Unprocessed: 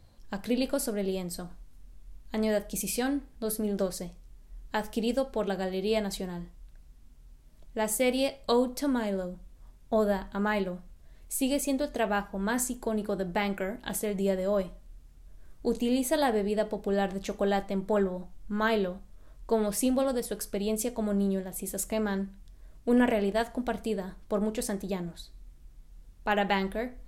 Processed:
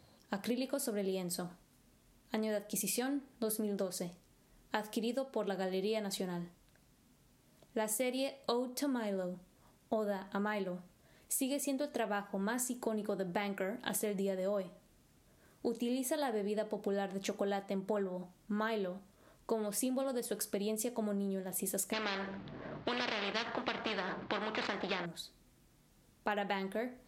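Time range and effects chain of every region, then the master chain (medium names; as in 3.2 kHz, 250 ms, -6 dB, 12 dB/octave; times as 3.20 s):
21.93–25.06 s: median filter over 15 samples + low-pass 4.1 kHz 24 dB/octave + spectrum-flattening compressor 4:1
whole clip: compression 6:1, threshold -34 dBFS; high-pass 160 Hz 12 dB/octave; trim +1.5 dB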